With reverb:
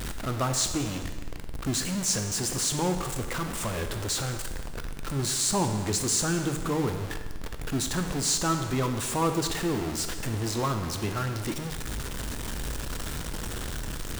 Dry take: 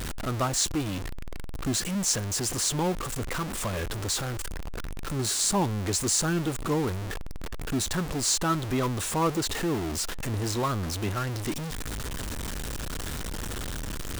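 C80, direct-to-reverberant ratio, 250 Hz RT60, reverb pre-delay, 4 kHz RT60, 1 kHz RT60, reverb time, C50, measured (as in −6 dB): 9.5 dB, 6.5 dB, 1.4 s, 6 ms, 1.3 s, 1.4 s, 1.4 s, 8.0 dB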